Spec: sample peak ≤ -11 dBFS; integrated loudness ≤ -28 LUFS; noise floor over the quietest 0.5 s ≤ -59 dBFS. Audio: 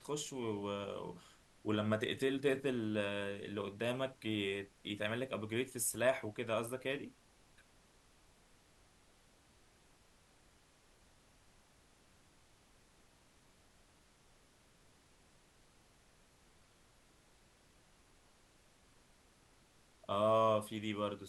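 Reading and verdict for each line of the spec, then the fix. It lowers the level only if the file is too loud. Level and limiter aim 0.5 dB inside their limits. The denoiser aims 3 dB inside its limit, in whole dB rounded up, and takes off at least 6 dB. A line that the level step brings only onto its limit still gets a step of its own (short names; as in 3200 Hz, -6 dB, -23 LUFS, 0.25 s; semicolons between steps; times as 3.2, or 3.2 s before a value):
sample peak -21.0 dBFS: OK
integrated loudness -38.0 LUFS: OK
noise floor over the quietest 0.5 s -68 dBFS: OK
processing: none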